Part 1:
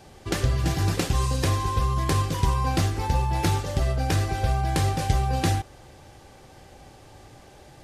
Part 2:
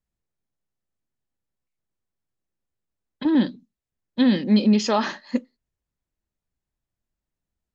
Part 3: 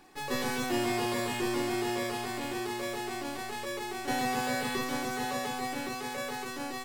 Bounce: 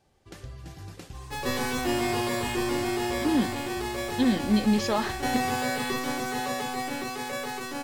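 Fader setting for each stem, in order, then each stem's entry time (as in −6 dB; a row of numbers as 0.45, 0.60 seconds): −18.5, −5.5, +3.0 decibels; 0.00, 0.00, 1.15 seconds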